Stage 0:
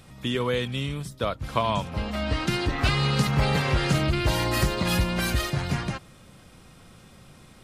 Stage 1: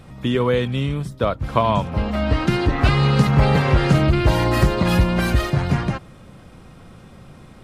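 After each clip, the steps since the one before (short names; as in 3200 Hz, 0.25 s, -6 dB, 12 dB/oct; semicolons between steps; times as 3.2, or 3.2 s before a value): high shelf 2400 Hz -11.5 dB; gain +8 dB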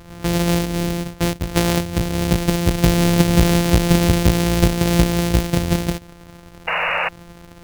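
sample sorter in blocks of 256 samples; dynamic EQ 1200 Hz, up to -8 dB, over -35 dBFS, Q 0.97; painted sound noise, 6.67–7.09, 460–2900 Hz -22 dBFS; gain +1.5 dB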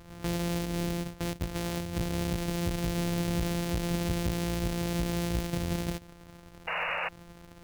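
limiter -13.5 dBFS, peak gain reduction 11.5 dB; gain -9 dB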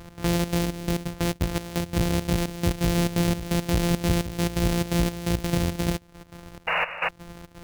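step gate "x.xxx.xx.." 171 bpm -12 dB; gain +8 dB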